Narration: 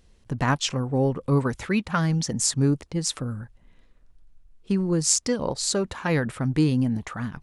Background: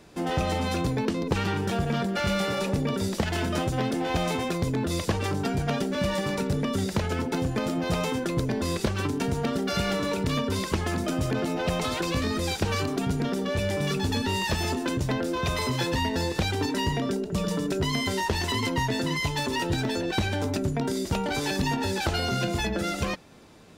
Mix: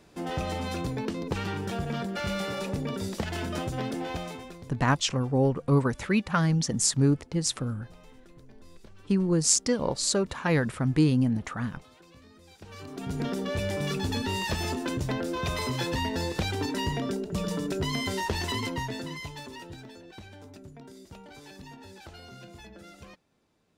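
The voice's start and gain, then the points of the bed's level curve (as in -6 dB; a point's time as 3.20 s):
4.40 s, -1.0 dB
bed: 4.03 s -5 dB
5.00 s -27 dB
12.46 s -27 dB
13.21 s -3 dB
18.52 s -3 dB
20.00 s -20 dB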